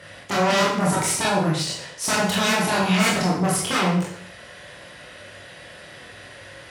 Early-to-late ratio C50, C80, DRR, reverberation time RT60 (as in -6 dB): 3.0 dB, 6.0 dB, -5.0 dB, 0.65 s